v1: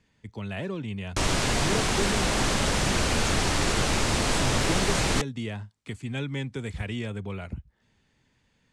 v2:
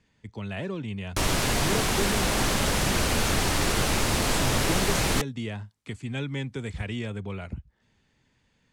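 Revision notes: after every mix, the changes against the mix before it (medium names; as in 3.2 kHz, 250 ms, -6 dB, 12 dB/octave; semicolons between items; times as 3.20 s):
background: remove low-pass 8.9 kHz 24 dB/octave; master: add low-pass 11 kHz 12 dB/octave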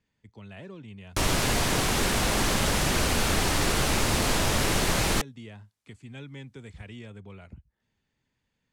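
speech -10.5 dB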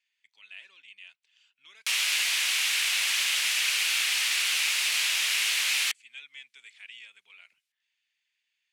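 background: entry +0.70 s; master: add resonant high-pass 2.5 kHz, resonance Q 2.3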